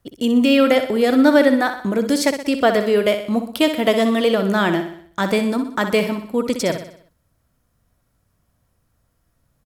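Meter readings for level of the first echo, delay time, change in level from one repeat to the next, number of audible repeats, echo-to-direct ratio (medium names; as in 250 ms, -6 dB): -9.0 dB, 62 ms, -6.0 dB, 5, -7.5 dB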